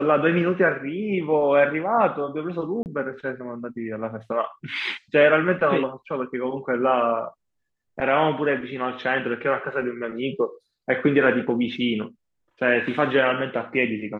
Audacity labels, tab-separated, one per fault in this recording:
2.830000	2.860000	drop-out 29 ms

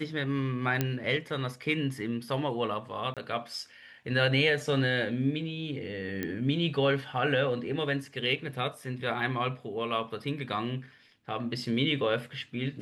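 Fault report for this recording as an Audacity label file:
0.810000	0.810000	click −12 dBFS
3.140000	3.170000	drop-out 27 ms
6.230000	6.230000	click −18 dBFS

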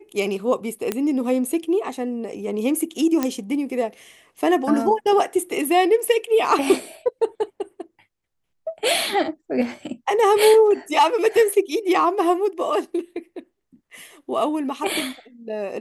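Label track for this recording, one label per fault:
0.920000	0.920000	click −9 dBFS
3.230000	3.230000	click −8 dBFS

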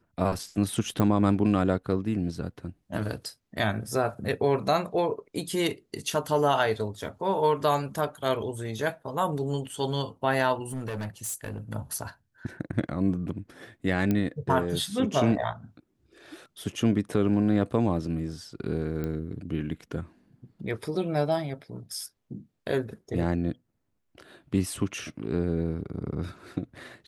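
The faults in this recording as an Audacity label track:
1.000000	1.000000	click −13 dBFS
10.690000	11.600000	clipping −29.5 dBFS
14.110000	14.110000	click −14 dBFS
19.040000	19.040000	click −20 dBFS

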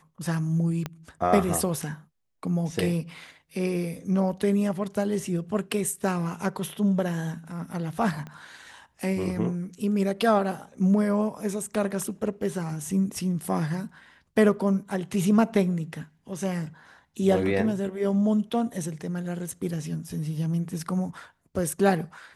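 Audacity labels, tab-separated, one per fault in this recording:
0.860000	0.860000	click −16 dBFS
8.270000	8.270000	click −26 dBFS

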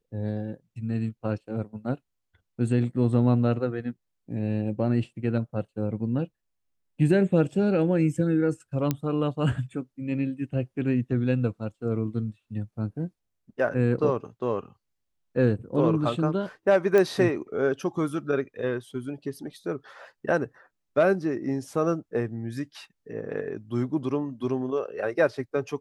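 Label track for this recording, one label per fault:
8.910000	8.910000	click −11 dBFS
16.980000	16.980000	click −12 dBFS

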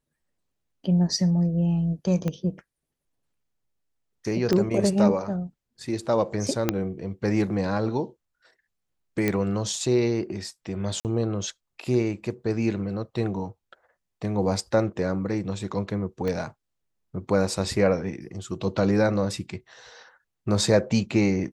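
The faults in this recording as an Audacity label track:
2.280000	2.280000	click −16 dBFS
4.530000	4.530000	click −11 dBFS
6.690000	6.690000	click −7 dBFS
9.280000	9.280000	click −10 dBFS
11.000000	11.050000	drop-out 48 ms
16.280000	16.280000	click −17 dBFS

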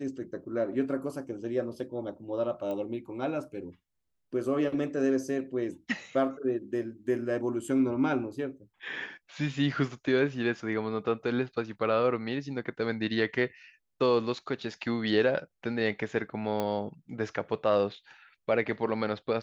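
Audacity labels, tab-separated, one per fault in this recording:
2.710000	2.710000	click −25 dBFS
16.600000	16.600000	click −17 dBFS

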